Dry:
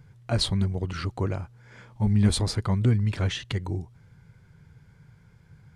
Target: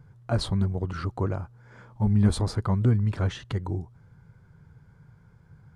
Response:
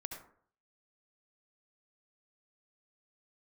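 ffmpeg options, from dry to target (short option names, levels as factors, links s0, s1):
-af "highshelf=f=1700:t=q:w=1.5:g=-6.5"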